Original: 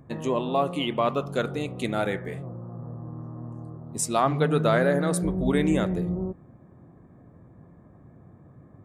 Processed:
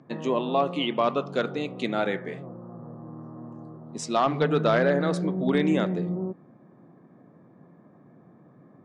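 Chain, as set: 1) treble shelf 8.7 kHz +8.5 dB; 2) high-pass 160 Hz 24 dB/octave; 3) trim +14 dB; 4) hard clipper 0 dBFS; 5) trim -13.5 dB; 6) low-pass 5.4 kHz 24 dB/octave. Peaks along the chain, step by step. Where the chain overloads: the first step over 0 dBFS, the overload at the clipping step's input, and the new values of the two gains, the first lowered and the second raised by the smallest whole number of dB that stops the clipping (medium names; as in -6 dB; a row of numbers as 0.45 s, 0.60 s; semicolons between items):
-8.5 dBFS, -9.0 dBFS, +5.0 dBFS, 0.0 dBFS, -13.5 dBFS, -13.0 dBFS; step 3, 5.0 dB; step 3 +9 dB, step 5 -8.5 dB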